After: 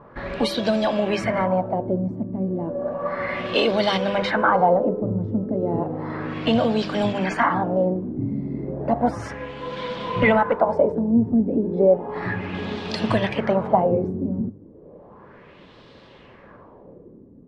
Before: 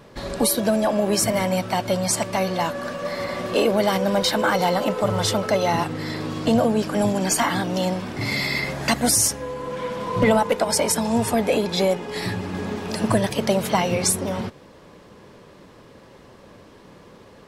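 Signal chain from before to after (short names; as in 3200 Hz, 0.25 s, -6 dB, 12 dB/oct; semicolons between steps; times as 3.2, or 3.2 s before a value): LFO low-pass sine 0.33 Hz 260–3900 Hz; de-hum 100.6 Hz, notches 17; gain -1 dB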